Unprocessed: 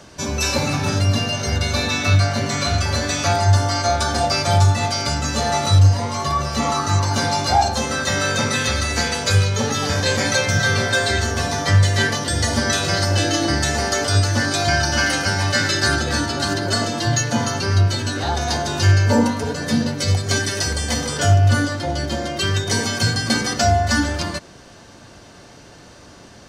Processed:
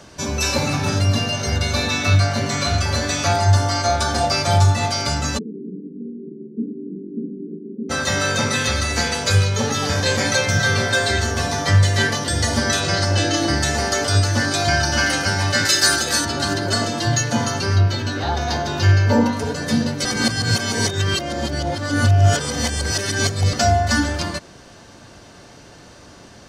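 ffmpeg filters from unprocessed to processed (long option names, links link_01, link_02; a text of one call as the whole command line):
ffmpeg -i in.wav -filter_complex "[0:a]asplit=3[link_01][link_02][link_03];[link_01]afade=type=out:start_time=5.37:duration=0.02[link_04];[link_02]asuperpass=centerf=270:order=20:qfactor=1,afade=type=in:start_time=5.37:duration=0.02,afade=type=out:start_time=7.89:duration=0.02[link_05];[link_03]afade=type=in:start_time=7.89:duration=0.02[link_06];[link_04][link_05][link_06]amix=inputs=3:normalize=0,asettb=1/sr,asplit=3[link_07][link_08][link_09];[link_07]atrim=end=12.804[link_10];[link_08]atrim=start=12.8:end=13.37,asetpts=PTS-STARTPTS,afade=type=in:duration=0.004:curve=qsin,afade=type=out:start_time=0.566:duration=0.004:curve=qsin,lowpass=8700[link_11];[link_09]atrim=start=13.366[link_12];[link_10][link_11]acrossfade=duration=0.004:curve1=hsin:curve2=qsin[link_13];[link_13][link_12]acrossfade=duration=0.004:curve1=qsin:curve2=hsin,asettb=1/sr,asplit=3[link_14][link_15][link_16];[link_14]atrim=end=15.654[link_17];[link_15]atrim=start=15.65:end=16.25,asetpts=PTS-STARTPTS,afade=type=in:duration=0.004:curve=qsin,afade=type=out:start_time=0.596:duration=0.004:curve=qsin,aemphasis=mode=production:type=bsi[link_18];[link_16]atrim=start=16.246[link_19];[link_17][link_18]acrossfade=duration=0.004:curve1=hsin:curve2=qsin[link_20];[link_20][link_19]acrossfade=duration=0.004:curve1=qsin:curve2=hsin,asettb=1/sr,asplit=3[link_21][link_22][link_23];[link_21]atrim=end=17.764[link_24];[link_22]atrim=start=17.76:end=19.33,asetpts=PTS-STARTPTS,afade=type=in:duration=0.004:curve=qsin,afade=type=out:start_time=1.566:duration=0.004:curve=qsin,equalizer=frequency=9000:width_type=o:width=0.83:gain=-13[link_25];[link_23]atrim=start=19.326[link_26];[link_24][link_25]acrossfade=duration=0.004:curve1=hsin:curve2=qsin[link_27];[link_27][link_26]acrossfade=duration=0.004:curve1=qsin:curve2=hsin,asplit=3[link_28][link_29][link_30];[link_28]atrim=end=20.052[link_31];[link_29]atrim=start=20.048:end=23.532,asetpts=PTS-STARTPTS,areverse[link_32];[link_30]atrim=start=23.528[link_33];[link_31][link_32]acrossfade=duration=0.004:curve1=hsin:curve2=hsin[link_34];[link_34][link_33]acrossfade=duration=0.004:curve1=hsin:curve2=hsin" out.wav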